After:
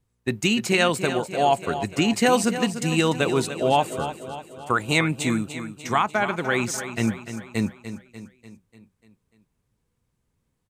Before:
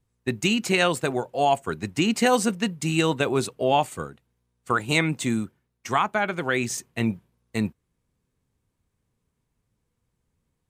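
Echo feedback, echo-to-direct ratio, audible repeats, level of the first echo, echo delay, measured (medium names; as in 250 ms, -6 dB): 54%, -9.5 dB, 5, -11.0 dB, 295 ms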